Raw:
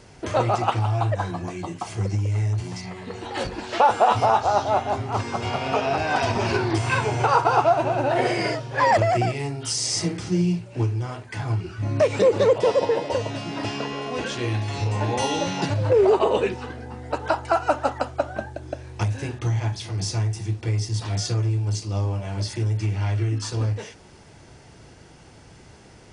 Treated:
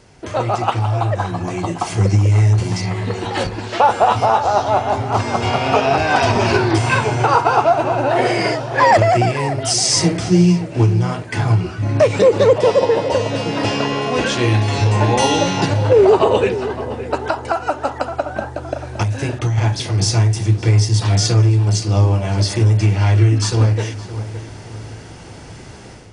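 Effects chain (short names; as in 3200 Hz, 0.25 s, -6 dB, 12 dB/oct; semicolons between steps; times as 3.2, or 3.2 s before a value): AGC gain up to 11 dB; darkening echo 0.566 s, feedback 44%, low-pass 2200 Hz, level -12.5 dB; 17.2–19.58 compressor, threshold -15 dBFS, peak gain reduction 7 dB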